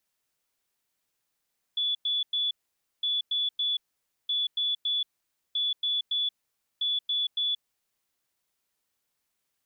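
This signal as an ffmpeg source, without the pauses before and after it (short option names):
-f lavfi -i "aevalsrc='0.0596*sin(2*PI*3440*t)*clip(min(mod(mod(t,1.26),0.28),0.18-mod(mod(t,1.26),0.28))/0.005,0,1)*lt(mod(t,1.26),0.84)':d=6.3:s=44100"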